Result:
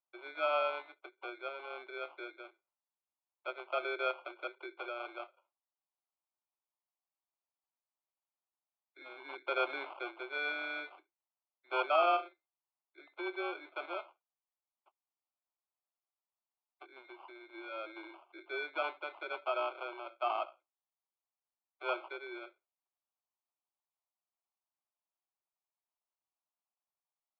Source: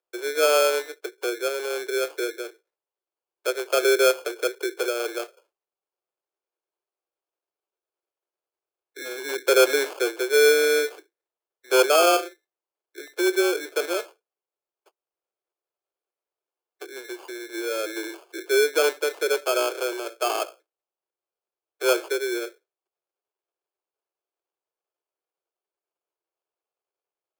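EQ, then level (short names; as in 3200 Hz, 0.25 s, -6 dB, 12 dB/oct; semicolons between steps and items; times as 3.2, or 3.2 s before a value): BPF 410–2200 Hz; air absorption 160 m; fixed phaser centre 1700 Hz, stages 6; -3.5 dB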